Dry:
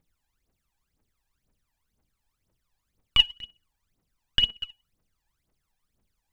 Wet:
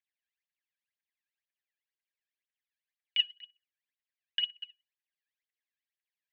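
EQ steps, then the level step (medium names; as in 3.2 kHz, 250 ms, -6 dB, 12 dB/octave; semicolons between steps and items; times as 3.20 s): Chebyshev high-pass 1.6 kHz, order 8; distance through air 290 m; -3.5 dB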